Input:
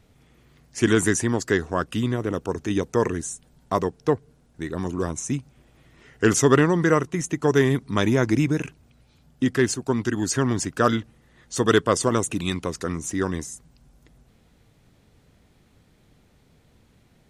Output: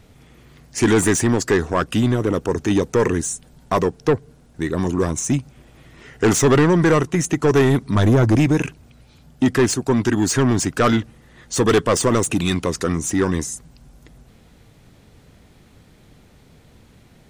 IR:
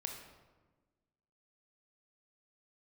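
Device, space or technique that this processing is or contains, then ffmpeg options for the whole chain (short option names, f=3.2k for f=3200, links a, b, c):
saturation between pre-emphasis and de-emphasis: -filter_complex "[0:a]asettb=1/sr,asplit=3[a][b][c];[a]atrim=end=7.954[d];[b]atrim=start=7.95:end=8.36,asetpts=PTS-STARTPTS,afade=t=in:d=0.004:c=qsin,afade=t=out:st=0.406:d=0.004:c=qsin,equalizer=f=100:t=o:w=0.67:g=8,equalizer=f=2.5k:t=o:w=0.67:g=-10,equalizer=f=6.3k:t=o:w=0.67:g=-5[e];[c]atrim=start=8.356[f];[d][e]acrossfade=d=0.004:c1=hsin:c2=qsin[g];[g][f]acrossfade=d=0.004:c1=qsin:c2=hsin,highshelf=f=4.3k:g=10,asoftclip=type=tanh:threshold=-18dB,highshelf=f=4.3k:g=-10,volume=8.5dB"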